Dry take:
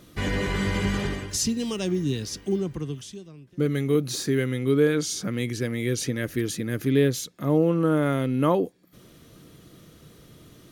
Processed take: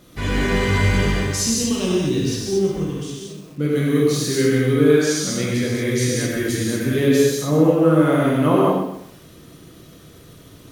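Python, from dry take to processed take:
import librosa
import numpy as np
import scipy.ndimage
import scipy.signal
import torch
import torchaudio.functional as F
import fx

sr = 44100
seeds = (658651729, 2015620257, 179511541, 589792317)

y = fx.rev_gated(x, sr, seeds[0], gate_ms=260, shape='flat', drr_db=-5.5)
y = fx.echo_crushed(y, sr, ms=127, feedback_pct=35, bits=7, wet_db=-9.5)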